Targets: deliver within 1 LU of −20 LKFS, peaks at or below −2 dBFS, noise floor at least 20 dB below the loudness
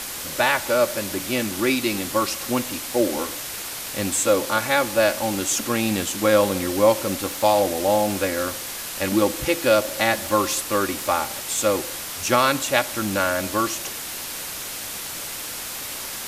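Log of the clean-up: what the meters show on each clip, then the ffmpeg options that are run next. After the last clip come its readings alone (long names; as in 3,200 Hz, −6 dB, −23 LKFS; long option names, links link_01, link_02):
background noise floor −32 dBFS; target noise floor −43 dBFS; integrated loudness −22.5 LKFS; sample peak −1.5 dBFS; target loudness −20.0 LKFS
→ -af "afftdn=noise_reduction=11:noise_floor=-32"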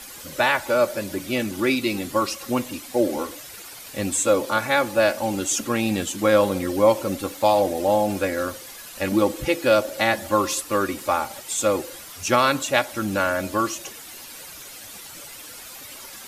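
background noise floor −41 dBFS; target noise floor −43 dBFS
→ -af "afftdn=noise_reduction=6:noise_floor=-41"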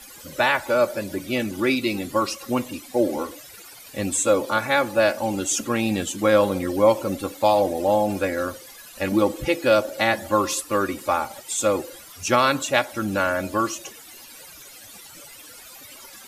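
background noise floor −44 dBFS; integrated loudness −22.5 LKFS; sample peak −1.5 dBFS; target loudness −20.0 LKFS
→ -af "volume=2.5dB,alimiter=limit=-2dB:level=0:latency=1"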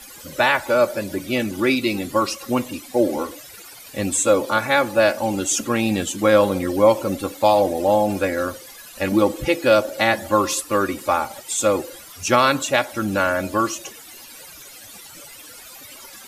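integrated loudness −20.0 LKFS; sample peak −2.0 dBFS; background noise floor −42 dBFS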